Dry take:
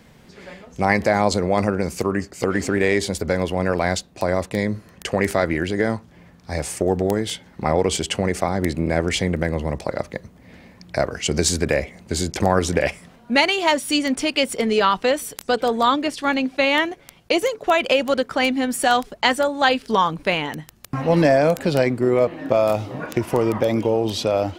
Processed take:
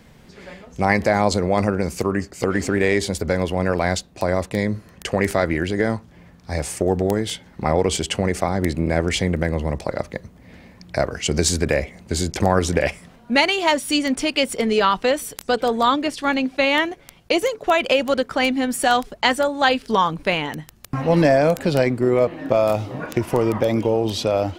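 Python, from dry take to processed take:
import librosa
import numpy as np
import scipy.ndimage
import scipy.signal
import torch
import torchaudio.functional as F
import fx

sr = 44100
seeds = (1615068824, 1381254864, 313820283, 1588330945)

y = fx.low_shelf(x, sr, hz=69.0, db=6.0)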